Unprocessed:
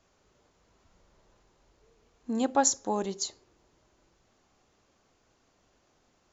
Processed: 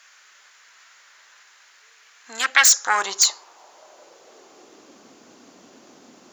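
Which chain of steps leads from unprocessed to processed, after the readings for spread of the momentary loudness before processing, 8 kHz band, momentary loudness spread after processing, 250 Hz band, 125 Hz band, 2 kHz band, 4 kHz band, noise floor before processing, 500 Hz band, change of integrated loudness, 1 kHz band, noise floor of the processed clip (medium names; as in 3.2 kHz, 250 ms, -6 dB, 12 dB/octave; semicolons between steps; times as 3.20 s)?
11 LU, no reading, 8 LU, -14.5 dB, under -10 dB, +25.0 dB, +17.0 dB, -70 dBFS, -5.5 dB, +12.0 dB, +6.5 dB, -54 dBFS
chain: tone controls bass 0 dB, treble +3 dB; sine folder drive 14 dB, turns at -8 dBFS; high-pass sweep 1.7 kHz -> 240 Hz, 2.66–5.07 s; trim -1 dB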